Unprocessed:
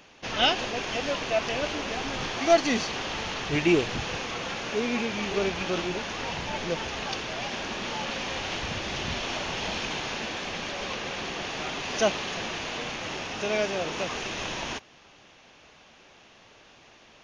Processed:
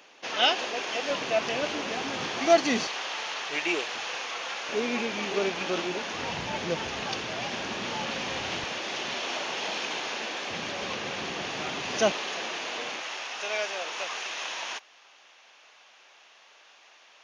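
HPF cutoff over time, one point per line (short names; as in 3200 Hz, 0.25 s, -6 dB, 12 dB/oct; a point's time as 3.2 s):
360 Hz
from 1.1 s 160 Hz
from 2.87 s 640 Hz
from 4.69 s 230 Hz
from 6.14 s 85 Hz
from 8.64 s 330 Hz
from 10.5 s 94 Hz
from 12.12 s 350 Hz
from 13.01 s 750 Hz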